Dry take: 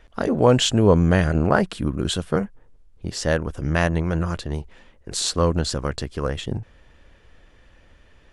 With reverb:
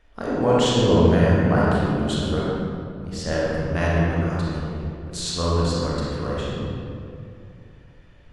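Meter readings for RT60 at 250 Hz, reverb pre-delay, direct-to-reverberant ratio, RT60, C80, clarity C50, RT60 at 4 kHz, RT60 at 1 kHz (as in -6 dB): 3.0 s, 27 ms, -7.0 dB, 2.5 s, -1.5 dB, -4.0 dB, 1.4 s, 2.3 s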